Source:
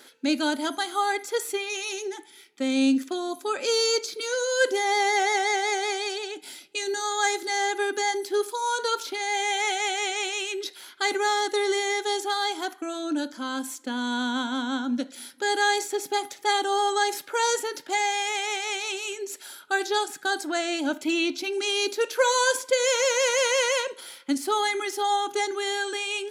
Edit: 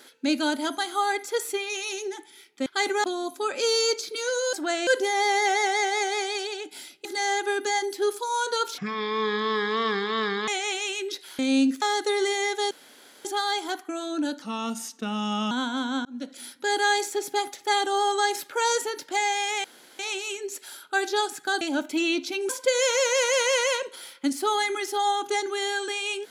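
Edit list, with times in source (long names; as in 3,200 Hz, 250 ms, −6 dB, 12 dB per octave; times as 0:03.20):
0:02.66–0:03.09: swap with 0:10.91–0:11.29
0:06.76–0:07.37: remove
0:09.10–0:10.00: play speed 53%
0:12.18: splice in room tone 0.54 s
0:13.35–0:14.29: play speed 86%
0:14.83–0:15.16: fade in
0:18.42–0:18.77: fill with room tone
0:20.39–0:20.73: move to 0:04.58
0:21.61–0:22.54: remove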